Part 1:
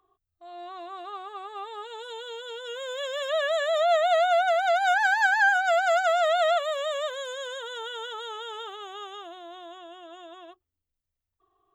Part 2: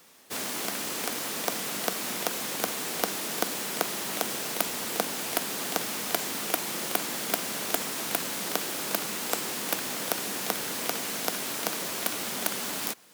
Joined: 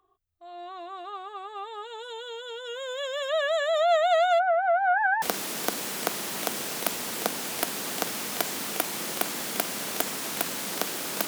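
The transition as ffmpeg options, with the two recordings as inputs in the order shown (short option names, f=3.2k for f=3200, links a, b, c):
-filter_complex "[0:a]asplit=3[a][b][c];[a]afade=t=out:st=4.38:d=0.02[d];[b]lowpass=f=1.7k:w=0.5412,lowpass=f=1.7k:w=1.3066,afade=t=in:st=4.38:d=0.02,afade=t=out:st=5.22:d=0.02[e];[c]afade=t=in:st=5.22:d=0.02[f];[d][e][f]amix=inputs=3:normalize=0,apad=whole_dur=11.27,atrim=end=11.27,atrim=end=5.222[g];[1:a]atrim=start=2.958:end=9.01[h];[g][h]acrossfade=d=0.004:c1=hsin:c2=hsin"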